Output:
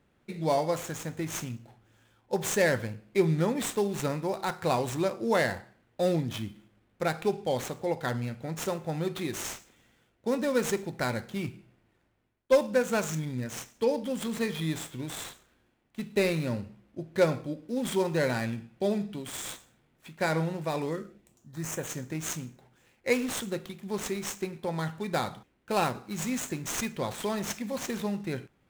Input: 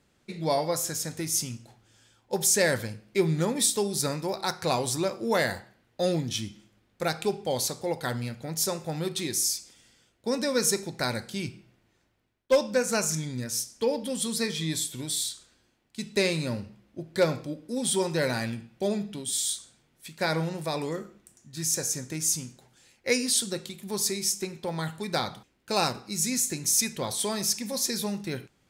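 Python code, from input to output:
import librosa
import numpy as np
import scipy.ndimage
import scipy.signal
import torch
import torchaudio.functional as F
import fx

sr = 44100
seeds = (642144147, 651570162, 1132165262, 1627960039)

y = scipy.signal.medfilt(x, 9)
y = fx.peak_eq(y, sr, hz=fx.line((20.94, 650.0), (21.86, 5500.0)), db=-13.0, octaves=0.47, at=(20.94, 21.86), fade=0.02)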